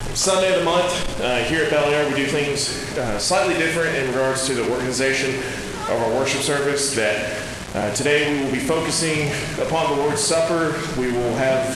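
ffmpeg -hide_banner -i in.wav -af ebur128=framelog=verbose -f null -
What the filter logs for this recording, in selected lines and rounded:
Integrated loudness:
  I:         -20.2 LUFS
  Threshold: -30.1 LUFS
Loudness range:
  LRA:         1.2 LU
  Threshold: -40.3 LUFS
  LRA low:   -20.9 LUFS
  LRA high:  -19.7 LUFS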